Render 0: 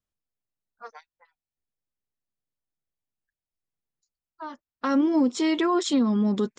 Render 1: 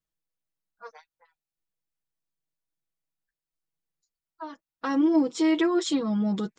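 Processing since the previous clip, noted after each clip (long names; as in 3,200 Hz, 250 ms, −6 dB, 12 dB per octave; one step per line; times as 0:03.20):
comb filter 6.2 ms, depth 92%
level −4 dB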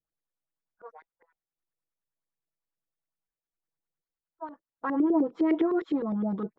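auto-filter low-pass saw up 9.8 Hz 380–2,100 Hz
level −4.5 dB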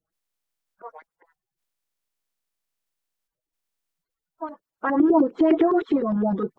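spectral magnitudes quantised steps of 30 dB
level +7 dB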